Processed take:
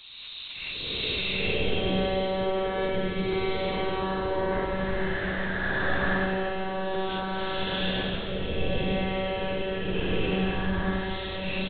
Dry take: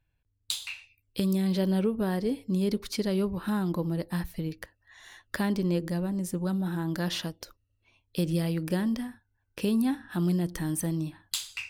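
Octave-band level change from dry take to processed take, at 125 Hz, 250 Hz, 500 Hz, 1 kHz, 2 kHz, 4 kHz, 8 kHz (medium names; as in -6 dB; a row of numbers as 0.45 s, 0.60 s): -2.0 dB, -3.5 dB, +5.5 dB, +10.0 dB, +11.0 dB, +7.0 dB, under -40 dB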